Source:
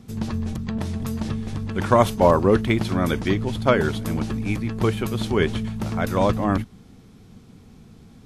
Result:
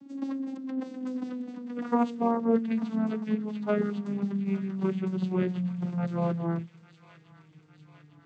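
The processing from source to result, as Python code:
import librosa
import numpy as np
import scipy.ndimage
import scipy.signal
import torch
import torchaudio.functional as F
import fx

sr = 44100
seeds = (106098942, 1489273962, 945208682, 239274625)

p1 = fx.vocoder_glide(x, sr, note=61, semitones=-11)
p2 = fx.rider(p1, sr, range_db=3, speed_s=2.0)
p3 = p2 + fx.echo_wet_highpass(p2, sr, ms=852, feedback_pct=65, hz=1900.0, wet_db=-10.5, dry=0)
y = p3 * librosa.db_to_amplitude(-6.0)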